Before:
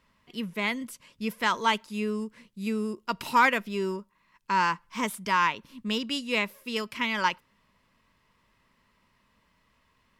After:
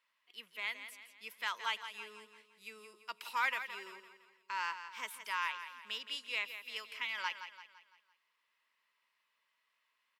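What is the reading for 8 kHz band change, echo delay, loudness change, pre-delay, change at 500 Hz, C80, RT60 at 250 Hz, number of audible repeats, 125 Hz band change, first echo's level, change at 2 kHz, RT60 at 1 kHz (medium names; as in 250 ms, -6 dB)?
-11.0 dB, 169 ms, -11.0 dB, no reverb, -22.0 dB, no reverb, no reverb, 4, under -35 dB, -10.5 dB, -9.0 dB, no reverb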